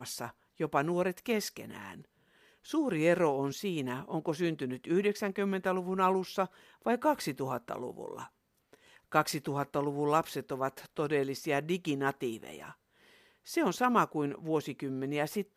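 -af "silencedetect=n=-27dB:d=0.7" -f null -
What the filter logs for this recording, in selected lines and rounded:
silence_start: 1.45
silence_end: 2.74 | silence_duration: 1.29
silence_start: 7.76
silence_end: 9.15 | silence_duration: 1.39
silence_start: 12.28
silence_end: 13.57 | silence_duration: 1.29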